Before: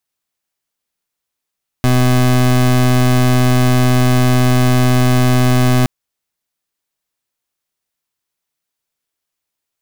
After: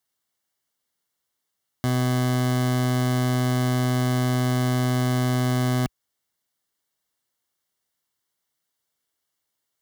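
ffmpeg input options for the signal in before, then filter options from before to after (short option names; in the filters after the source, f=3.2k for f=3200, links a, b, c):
-f lavfi -i "aevalsrc='0.282*(2*lt(mod(126*t,1),0.27)-1)':d=4.02:s=44100"
-af "highpass=52,alimiter=limit=-16dB:level=0:latency=1:release=23,asuperstop=centerf=2500:order=8:qfactor=6.8"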